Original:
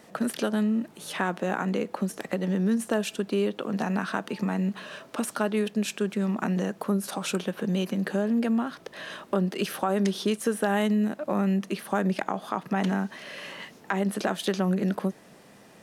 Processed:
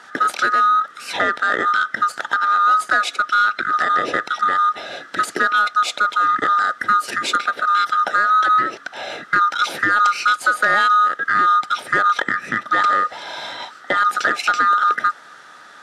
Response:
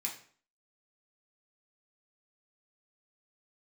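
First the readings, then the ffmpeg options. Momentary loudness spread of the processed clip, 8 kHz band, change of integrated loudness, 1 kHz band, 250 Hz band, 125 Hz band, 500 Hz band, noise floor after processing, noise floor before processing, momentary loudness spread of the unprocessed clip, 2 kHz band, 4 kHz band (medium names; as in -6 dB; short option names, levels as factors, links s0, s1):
8 LU, +4.5 dB, +10.5 dB, +18.5 dB, -10.5 dB, under -10 dB, -1.5 dB, -43 dBFS, -53 dBFS, 7 LU, +18.0 dB, +10.5 dB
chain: -filter_complex "[0:a]afftfilt=real='real(if(lt(b,960),b+48*(1-2*mod(floor(b/48),2)),b),0)':imag='imag(if(lt(b,960),b+48*(1-2*mod(floor(b/48),2)),b),0)':win_size=2048:overlap=0.75,asplit=2[s0][s1];[s1]asoftclip=type=hard:threshold=0.0596,volume=0.531[s2];[s0][s2]amix=inputs=2:normalize=0,highpass=240,lowpass=6600,volume=2.11"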